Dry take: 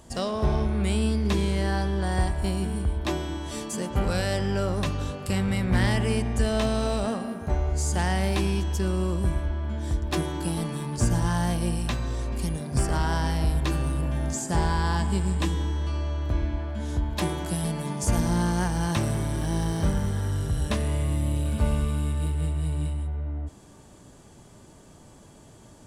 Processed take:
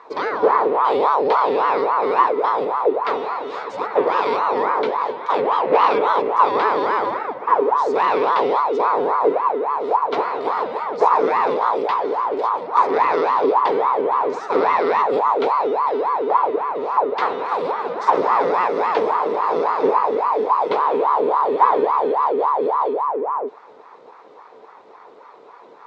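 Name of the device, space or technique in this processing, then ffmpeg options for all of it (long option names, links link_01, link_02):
voice changer toy: -af "aeval=exprs='val(0)*sin(2*PI*710*n/s+710*0.55/3.6*sin(2*PI*3.6*n/s))':channel_layout=same,highpass=420,equalizer=frequency=440:width_type=q:width=4:gain=9,equalizer=frequency=660:width_type=q:width=4:gain=-4,equalizer=frequency=980:width_type=q:width=4:gain=5,equalizer=frequency=1600:width_type=q:width=4:gain=-4,equalizer=frequency=2900:width_type=q:width=4:gain=-7,lowpass=frequency=3600:width=0.5412,lowpass=frequency=3600:width=1.3066,volume=8.5dB"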